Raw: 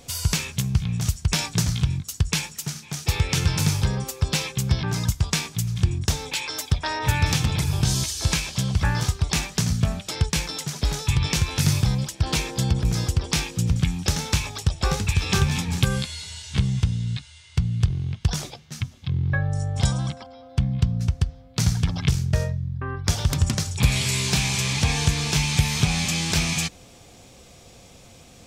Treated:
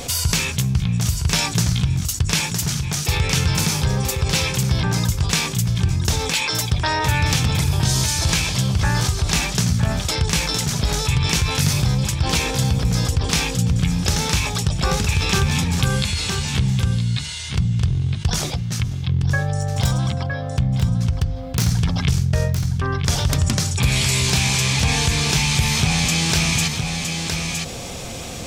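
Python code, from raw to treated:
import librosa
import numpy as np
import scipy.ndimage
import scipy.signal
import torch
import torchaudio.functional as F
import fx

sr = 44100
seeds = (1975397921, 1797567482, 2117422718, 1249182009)

y = fx.self_delay(x, sr, depth_ms=0.099, at=(19.61, 21.71))
y = fx.hum_notches(y, sr, base_hz=50, count=7)
y = y + 10.0 ** (-11.0 / 20.0) * np.pad(y, (int(963 * sr / 1000.0), 0))[:len(y)]
y = fx.env_flatten(y, sr, amount_pct=50)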